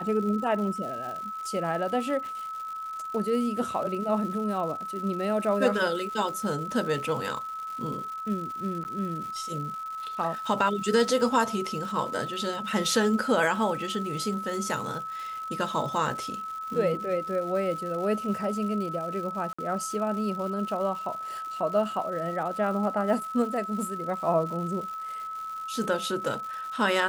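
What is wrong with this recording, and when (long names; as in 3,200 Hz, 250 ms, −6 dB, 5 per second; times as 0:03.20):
surface crackle 250 per second −37 dBFS
whistle 1,300 Hz −33 dBFS
0:08.84–0:08.85: drop-out 9.9 ms
0:19.53–0:19.59: drop-out 55 ms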